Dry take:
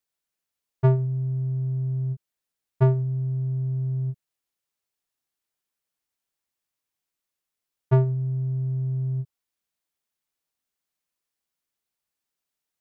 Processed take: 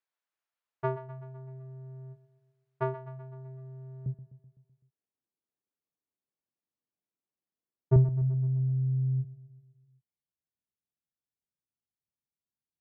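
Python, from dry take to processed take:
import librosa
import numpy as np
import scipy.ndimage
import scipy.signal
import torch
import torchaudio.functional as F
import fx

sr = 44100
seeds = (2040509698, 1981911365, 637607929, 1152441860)

y = fx.bandpass_q(x, sr, hz=fx.steps((0.0, 1200.0), (4.06, 250.0), (7.96, 110.0)), q=0.8)
y = fx.echo_feedback(y, sr, ms=127, feedback_pct=59, wet_db=-14)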